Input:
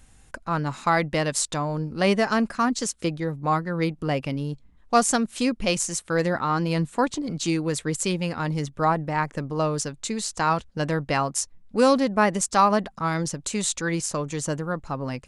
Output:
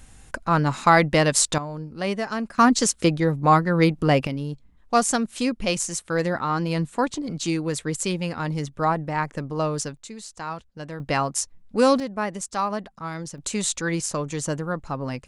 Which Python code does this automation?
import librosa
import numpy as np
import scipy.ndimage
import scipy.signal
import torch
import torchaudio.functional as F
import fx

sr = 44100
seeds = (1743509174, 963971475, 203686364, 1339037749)

y = fx.gain(x, sr, db=fx.steps((0.0, 5.5), (1.58, -5.5), (2.58, 6.5), (4.27, -0.5), (9.97, -10.0), (11.0, 0.5), (12.0, -7.0), (13.38, 0.5)))